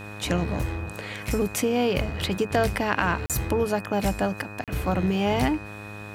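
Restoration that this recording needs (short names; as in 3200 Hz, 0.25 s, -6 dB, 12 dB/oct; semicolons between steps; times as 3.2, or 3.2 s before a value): de-click; de-hum 103.6 Hz, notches 18; notch 2500 Hz, Q 30; interpolate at 3.26/4.64, 37 ms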